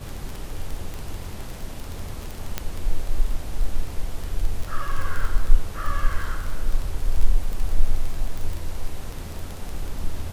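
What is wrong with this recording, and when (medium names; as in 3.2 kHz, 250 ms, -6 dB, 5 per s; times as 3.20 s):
crackle 16 per s -25 dBFS
2.58 s: pop -9 dBFS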